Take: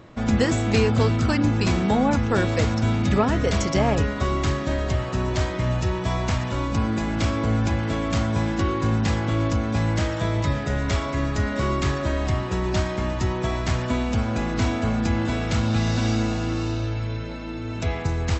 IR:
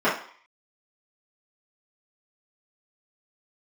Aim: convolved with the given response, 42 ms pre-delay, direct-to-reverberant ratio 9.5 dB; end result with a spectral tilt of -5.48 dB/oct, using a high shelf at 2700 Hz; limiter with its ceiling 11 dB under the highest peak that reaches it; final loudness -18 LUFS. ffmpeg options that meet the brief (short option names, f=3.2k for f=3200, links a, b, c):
-filter_complex "[0:a]highshelf=f=2.7k:g=7,alimiter=limit=-16.5dB:level=0:latency=1,asplit=2[a][b];[1:a]atrim=start_sample=2205,adelay=42[c];[b][c]afir=irnorm=-1:irlink=0,volume=-28dB[d];[a][d]amix=inputs=2:normalize=0,volume=7dB"